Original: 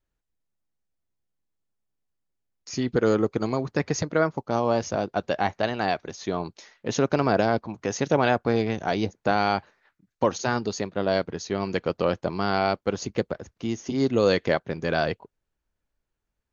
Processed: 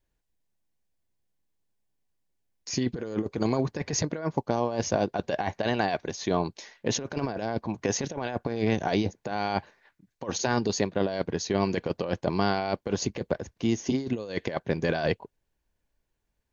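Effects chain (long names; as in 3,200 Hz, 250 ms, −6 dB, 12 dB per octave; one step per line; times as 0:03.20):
notch filter 1,300 Hz, Q 5.9
compressor whose output falls as the input rises −26 dBFS, ratio −0.5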